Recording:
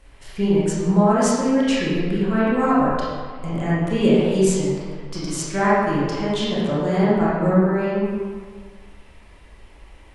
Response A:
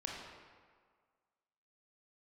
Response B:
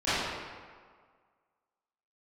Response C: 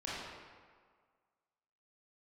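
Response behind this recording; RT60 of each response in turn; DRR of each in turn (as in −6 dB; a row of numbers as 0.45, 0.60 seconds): C; 1.7, 1.7, 1.7 seconds; −2.0, −18.0, −8.5 decibels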